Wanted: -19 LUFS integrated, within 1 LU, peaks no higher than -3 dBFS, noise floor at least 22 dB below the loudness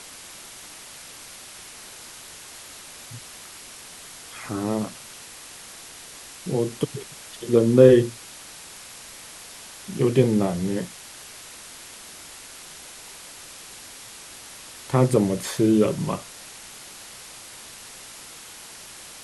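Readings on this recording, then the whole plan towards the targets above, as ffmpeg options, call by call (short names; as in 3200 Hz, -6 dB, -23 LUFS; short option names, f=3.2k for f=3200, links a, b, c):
noise floor -43 dBFS; noise floor target -44 dBFS; loudness -22.0 LUFS; peak -1.5 dBFS; loudness target -19.0 LUFS
-> -af "afftdn=nr=6:nf=-43"
-af "volume=3dB,alimiter=limit=-3dB:level=0:latency=1"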